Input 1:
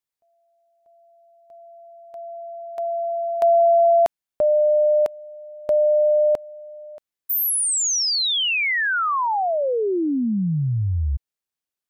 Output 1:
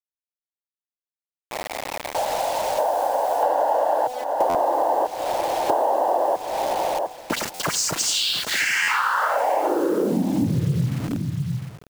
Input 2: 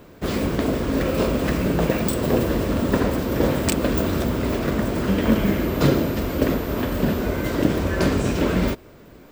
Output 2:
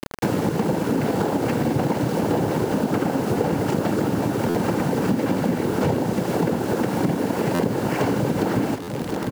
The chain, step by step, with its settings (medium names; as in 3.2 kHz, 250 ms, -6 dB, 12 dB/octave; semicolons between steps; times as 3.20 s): median filter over 15 samples; noise-vocoded speech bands 8; band-stop 2.5 kHz, Q 13; de-hum 250.6 Hz, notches 4; in parallel at -3 dB: peak limiter -12.5 dBFS; on the sum: bit crusher 6-bit; on a send: delay 705 ms -16.5 dB; on the sum: compression 5:1, threshold -29 dBFS; buffer glitch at 4.49/7.54/8.82 s, samples 512, times 4; trim +9 dB